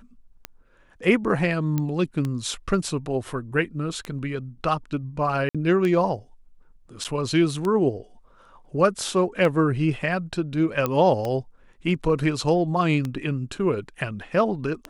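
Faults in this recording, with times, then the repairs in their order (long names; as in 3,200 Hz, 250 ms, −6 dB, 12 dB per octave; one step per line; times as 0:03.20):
scratch tick 33 1/3 rpm −15 dBFS
0:01.78: click −13 dBFS
0:05.49–0:05.55: drop-out 56 ms
0:07.04–0:07.05: drop-out 7.9 ms
0:10.86: click −10 dBFS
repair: click removal
repair the gap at 0:05.49, 56 ms
repair the gap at 0:07.04, 7.9 ms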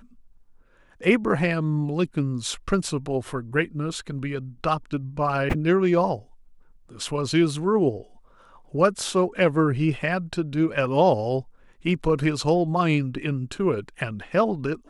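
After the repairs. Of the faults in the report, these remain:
none of them is left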